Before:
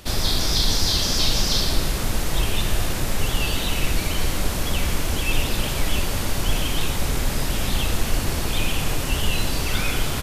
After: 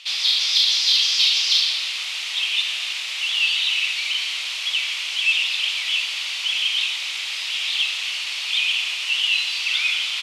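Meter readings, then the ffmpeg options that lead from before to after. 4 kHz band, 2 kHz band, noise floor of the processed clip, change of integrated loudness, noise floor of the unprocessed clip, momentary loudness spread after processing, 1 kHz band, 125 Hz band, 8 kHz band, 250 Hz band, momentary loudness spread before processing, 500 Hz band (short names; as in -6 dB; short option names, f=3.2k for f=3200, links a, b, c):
+7.5 dB, +7.0 dB, -28 dBFS, +4.0 dB, -25 dBFS, 9 LU, -11.0 dB, under -40 dB, -3.0 dB, under -35 dB, 5 LU, under -20 dB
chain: -af "asuperpass=centerf=1800:order=4:qfactor=0.92,aexciter=amount=9.2:drive=7.7:freq=2.4k,volume=-6.5dB"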